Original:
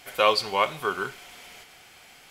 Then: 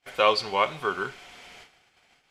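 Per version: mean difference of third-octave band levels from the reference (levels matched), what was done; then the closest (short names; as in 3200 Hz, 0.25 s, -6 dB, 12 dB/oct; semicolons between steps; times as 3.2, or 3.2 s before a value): 5.0 dB: gate -49 dBFS, range -27 dB; air absorption 59 m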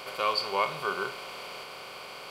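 8.0 dB: per-bin compression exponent 0.4; spectral noise reduction 8 dB; gain -4.5 dB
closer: first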